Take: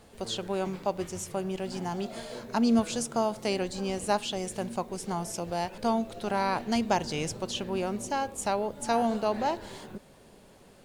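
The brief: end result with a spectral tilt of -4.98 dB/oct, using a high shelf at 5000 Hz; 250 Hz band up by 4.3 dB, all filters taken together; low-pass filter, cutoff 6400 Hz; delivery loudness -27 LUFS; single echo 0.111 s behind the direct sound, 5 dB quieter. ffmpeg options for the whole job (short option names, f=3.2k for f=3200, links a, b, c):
-af "lowpass=6.4k,equalizer=f=250:t=o:g=5,highshelf=f=5k:g=6,aecho=1:1:111:0.562"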